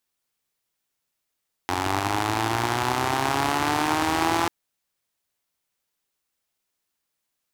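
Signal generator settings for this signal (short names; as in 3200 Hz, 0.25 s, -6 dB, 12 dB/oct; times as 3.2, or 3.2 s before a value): four-cylinder engine model, changing speed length 2.79 s, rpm 2700, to 5100, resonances 110/320/800 Hz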